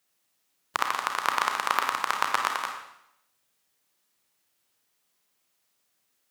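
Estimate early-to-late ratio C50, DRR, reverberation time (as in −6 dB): 4.5 dB, 3.0 dB, 0.80 s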